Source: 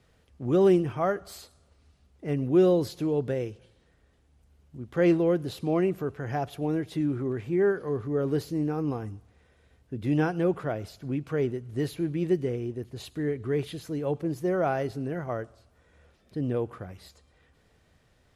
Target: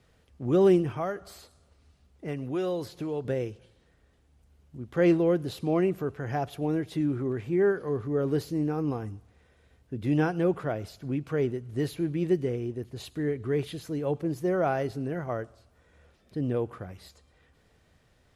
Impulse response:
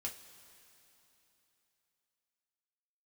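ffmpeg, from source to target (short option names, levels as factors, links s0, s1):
-filter_complex "[0:a]asettb=1/sr,asplit=3[s0][s1][s2];[s0]atrim=end=0.954[s3];[s1]atrim=start=0.95:end=3.25,asetpts=PTS-STARTPTS,afade=t=in:d=0.004:c=qsin,afade=t=out:st=2.296:d=0.004:c=qsin,acrossover=split=620|2500[s4][s5][s6];[s4]acompressor=threshold=0.0224:ratio=4[s7];[s5]acompressor=threshold=0.0224:ratio=4[s8];[s6]acompressor=threshold=0.00355:ratio=4[s9];[s7][s8][s9]amix=inputs=3:normalize=0[s10];[s2]atrim=start=3.246[s11];[s3][s10]acrossfade=d=0.004:c1=hsin:c2=qsin[s12];[s12][s11]acrossfade=d=0.004:c1=qsin:c2=hsin"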